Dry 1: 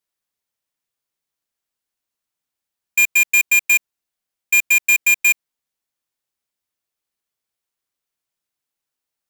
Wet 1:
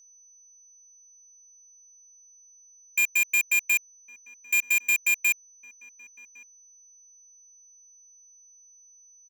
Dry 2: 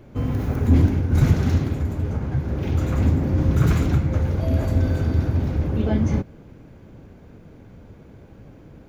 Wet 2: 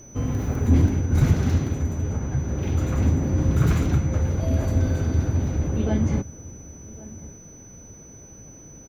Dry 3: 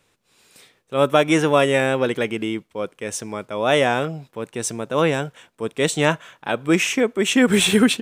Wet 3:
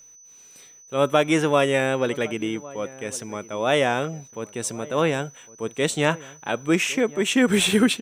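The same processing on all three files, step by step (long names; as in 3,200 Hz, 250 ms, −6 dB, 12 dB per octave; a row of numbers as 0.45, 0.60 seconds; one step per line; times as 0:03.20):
bit reduction 11 bits
steady tone 6,000 Hz −44 dBFS
slap from a distant wall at 190 metres, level −19 dB
loudness normalisation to −23 LKFS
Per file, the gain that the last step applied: −8.5, −1.5, −3.0 decibels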